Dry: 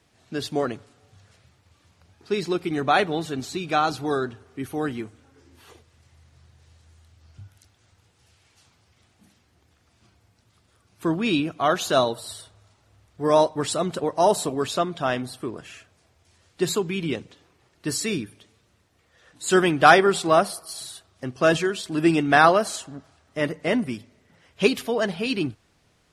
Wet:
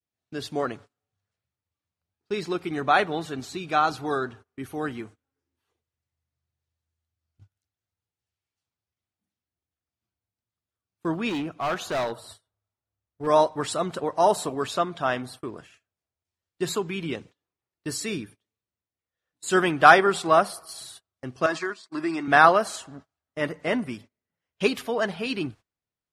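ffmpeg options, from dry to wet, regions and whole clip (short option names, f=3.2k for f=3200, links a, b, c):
-filter_complex "[0:a]asettb=1/sr,asplit=3[a][b][c];[a]atrim=end=11.294[d];[b]atrim=start=11.29:end=13.27,asetpts=PTS-STARTPTS,afade=t=in:d=0.004:c=qsin,afade=t=out:st=1.976:d=0.004:c=qsin,highshelf=f=2.2k:g=-5,volume=22dB,asoftclip=hard,volume=-22dB[e];[c]atrim=start=13.266[f];[d][e]acrossfade=d=0.004:c1=hsin:c2=qsin[g];[g][f]acrossfade=d=0.004:c1=qsin:c2=hsin,asettb=1/sr,asplit=3[h][i][j];[h]atrim=end=21.464[k];[i]atrim=start=21.46:end=22.28,asetpts=PTS-STARTPTS,afade=t=in:d=0.004:c=qsin,afade=t=out:st=0.816:d=0.004:c=qsin,acompressor=threshold=-22dB:ratio=3:attack=3.2:release=140:knee=1:detection=peak,agate=range=-12dB:threshold=-30dB:ratio=16:release=100:detection=peak,highpass=260,equalizer=f=330:t=q:w=4:g=4,equalizer=f=470:t=q:w=4:g=-9,equalizer=f=1.1k:t=q:w=4:g=8,equalizer=f=2k:t=q:w=4:g=5,equalizer=f=3k:t=q:w=4:g=-9,equalizer=f=4.6k:t=q:w=4:g=7,lowpass=f=9.1k:w=0.5412,lowpass=f=9.1k:w=1.3066[l];[j]atrim=start=22.276[m];[k][l]acrossfade=d=0.004:c1=hsin:c2=qsin[n];[n][m]acrossfade=d=0.004:c1=qsin:c2=hsin,adynamicequalizer=threshold=0.0224:dfrequency=1200:dqfactor=0.73:tfrequency=1200:tqfactor=0.73:attack=5:release=100:ratio=0.375:range=3:mode=boostabove:tftype=bell,agate=range=-26dB:threshold=-40dB:ratio=16:detection=peak,volume=-4.5dB"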